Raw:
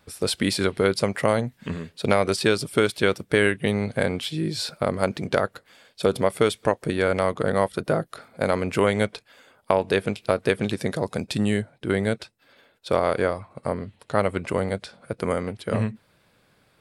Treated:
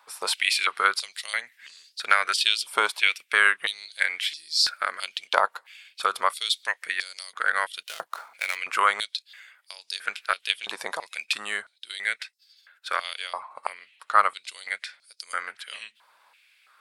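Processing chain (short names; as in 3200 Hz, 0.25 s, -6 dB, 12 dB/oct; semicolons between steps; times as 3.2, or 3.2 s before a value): 7.81–8.57 switching dead time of 0.061 ms; stepped high-pass 3 Hz 960–4900 Hz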